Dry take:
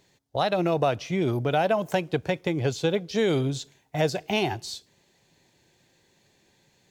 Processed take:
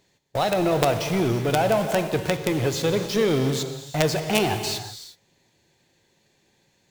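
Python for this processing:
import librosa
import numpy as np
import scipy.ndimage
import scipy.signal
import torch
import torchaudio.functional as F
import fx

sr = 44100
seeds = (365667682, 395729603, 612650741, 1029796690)

p1 = fx.quant_companded(x, sr, bits=2)
p2 = x + (p1 * librosa.db_to_amplitude(-3.5))
p3 = fx.rev_gated(p2, sr, seeds[0], gate_ms=390, shape='flat', drr_db=7.0)
y = p3 * librosa.db_to_amplitude(-1.5)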